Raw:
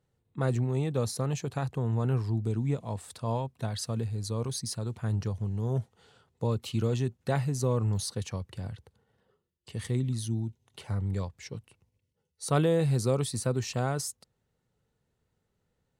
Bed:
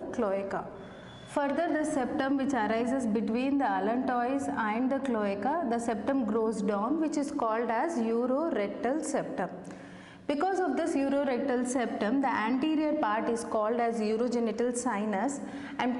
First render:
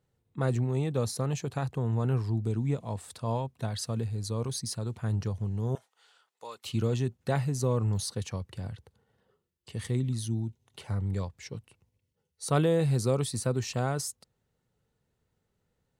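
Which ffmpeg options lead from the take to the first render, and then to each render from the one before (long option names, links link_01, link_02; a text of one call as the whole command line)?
ffmpeg -i in.wav -filter_complex "[0:a]asettb=1/sr,asplit=3[link_01][link_02][link_03];[link_01]atrim=end=5.754[link_04];[link_02]atrim=start=5.75:end=6.65,asetpts=PTS-STARTPTS,afade=type=in:duration=0.004:curve=qsin,afade=type=out:start_time=0.896:duration=0.004:curve=qsin,highpass=1000[link_05];[link_03]atrim=start=6.646[link_06];[link_04][link_05]acrossfade=duration=0.004:curve1=hsin:curve2=qsin[link_07];[link_07][link_06]acrossfade=duration=0.004:curve1=qsin:curve2=hsin" out.wav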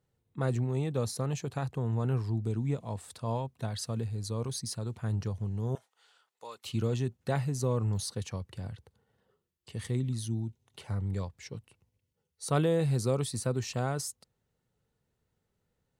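ffmpeg -i in.wav -af "volume=-2dB" out.wav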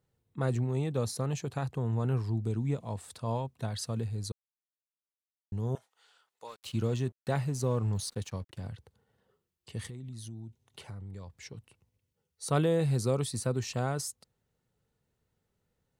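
ffmpeg -i in.wav -filter_complex "[0:a]asettb=1/sr,asplit=3[link_01][link_02][link_03];[link_01]atrim=end=6.474[link_04];[link_02]atrim=start=6.47:end=8.69,asetpts=PTS-STARTPTS,afade=type=in:duration=0.004:curve=qsin,afade=type=out:start_time=2.216:duration=0.004:curve=qsin,aeval=exprs='sgn(val(0))*max(abs(val(0))-0.00178,0)':channel_layout=same[link_05];[link_03]atrim=start=8.686[link_06];[link_04][link_05]acrossfade=duration=0.004:curve1=hsin:curve2=qsin[link_07];[link_07][link_06]acrossfade=duration=0.004:curve1=qsin:curve2=hsin,asettb=1/sr,asplit=3[link_08][link_09][link_10];[link_08]atrim=end=9.884[link_11];[link_09]atrim=start=9.88:end=11.58,asetpts=PTS-STARTPTS,afade=type=in:duration=0.004:curve=qsin,afade=type=out:start_time=1.696:duration=0.004:curve=qsin,acompressor=threshold=-40dB:ratio=6:attack=3.2:release=140:knee=1:detection=peak[link_12];[link_10]atrim=start=11.576[link_13];[link_11][link_12]acrossfade=duration=0.004:curve1=hsin:curve2=qsin[link_14];[link_14][link_13]acrossfade=duration=0.004:curve1=qsin:curve2=hsin,asplit=3[link_15][link_16][link_17];[link_15]atrim=end=4.32,asetpts=PTS-STARTPTS,afade=type=out:start_time=4.316:duration=0.004:curve=hsin[link_18];[link_16]atrim=start=4.32:end=5.52,asetpts=PTS-STARTPTS,volume=0[link_19];[link_17]atrim=start=5.52,asetpts=PTS-STARTPTS,afade=type=in:duration=0.004:curve=hsin[link_20];[link_18][link_19][link_20]concat=n=3:v=0:a=1" out.wav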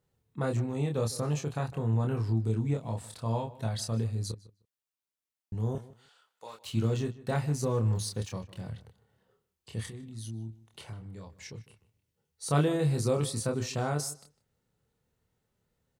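ffmpeg -i in.wav -filter_complex "[0:a]asplit=2[link_01][link_02];[link_02]adelay=27,volume=-4dB[link_03];[link_01][link_03]amix=inputs=2:normalize=0,asplit=2[link_04][link_05];[link_05]adelay=153,lowpass=frequency=3700:poles=1,volume=-18dB,asplit=2[link_06][link_07];[link_07]adelay=153,lowpass=frequency=3700:poles=1,volume=0.16[link_08];[link_04][link_06][link_08]amix=inputs=3:normalize=0" out.wav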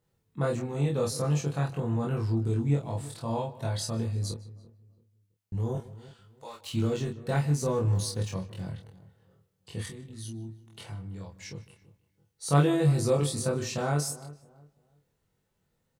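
ffmpeg -i in.wav -filter_complex "[0:a]asplit=2[link_01][link_02];[link_02]adelay=21,volume=-2dB[link_03];[link_01][link_03]amix=inputs=2:normalize=0,asplit=2[link_04][link_05];[link_05]adelay=334,lowpass=frequency=1200:poles=1,volume=-17.5dB,asplit=2[link_06][link_07];[link_07]adelay=334,lowpass=frequency=1200:poles=1,volume=0.3,asplit=2[link_08][link_09];[link_09]adelay=334,lowpass=frequency=1200:poles=1,volume=0.3[link_10];[link_04][link_06][link_08][link_10]amix=inputs=4:normalize=0" out.wav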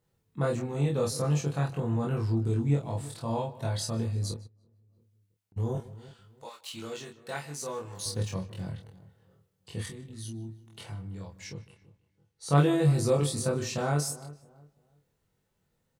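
ffmpeg -i in.wav -filter_complex "[0:a]asplit=3[link_01][link_02][link_03];[link_01]afade=type=out:start_time=4.46:duration=0.02[link_04];[link_02]acompressor=threshold=-60dB:ratio=16:attack=3.2:release=140:knee=1:detection=peak,afade=type=in:start_time=4.46:duration=0.02,afade=type=out:start_time=5.56:duration=0.02[link_05];[link_03]afade=type=in:start_time=5.56:duration=0.02[link_06];[link_04][link_05][link_06]amix=inputs=3:normalize=0,asettb=1/sr,asplit=3[link_07][link_08][link_09];[link_07]atrim=end=6.494[link_10];[link_08]atrim=start=6.49:end=8.06,asetpts=PTS-STARTPTS,afade=type=in:duration=0.004:curve=qsin,afade=type=out:start_time=1.566:duration=0.004:curve=qsin,highpass=frequency=1100:poles=1[link_11];[link_09]atrim=start=8.056[link_12];[link_10][link_11]acrossfade=duration=0.004:curve1=hsin:curve2=qsin[link_13];[link_13][link_12]acrossfade=duration=0.004:curve1=qsin:curve2=hsin,asettb=1/sr,asplit=3[link_14][link_15][link_16];[link_14]atrim=end=11.544[link_17];[link_15]atrim=start=11.54:end=12.58,asetpts=PTS-STARTPTS,afade=type=in:duration=0.004:curve=qsin,afade=type=out:start_time=1.036:duration=0.004:curve=qsin,highshelf=frequency=8100:gain=-10.5[link_18];[link_16]atrim=start=12.576[link_19];[link_17][link_18]acrossfade=duration=0.004:curve1=hsin:curve2=qsin[link_20];[link_20][link_19]acrossfade=duration=0.004:curve1=qsin:curve2=hsin" out.wav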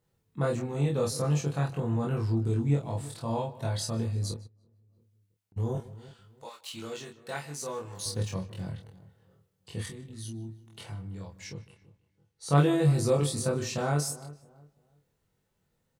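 ffmpeg -i in.wav -af anull out.wav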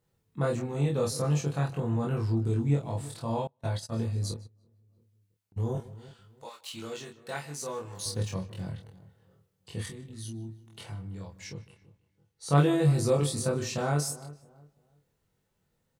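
ffmpeg -i in.wav -filter_complex "[0:a]asettb=1/sr,asplit=3[link_01][link_02][link_03];[link_01]atrim=end=3.474[link_04];[link_02]atrim=start=3.47:end=4.11,asetpts=PTS-STARTPTS,afade=type=in:duration=0.004:curve=qsin,afade=type=out:start_time=0.636:duration=0.004:curve=qsin,agate=range=-29dB:threshold=-33dB:ratio=16:release=100:detection=peak[link_05];[link_03]atrim=start=4.106[link_06];[link_04][link_05]acrossfade=duration=0.004:curve1=hsin:curve2=qsin[link_07];[link_07][link_06]acrossfade=duration=0.004:curve1=qsin:curve2=hsin" out.wav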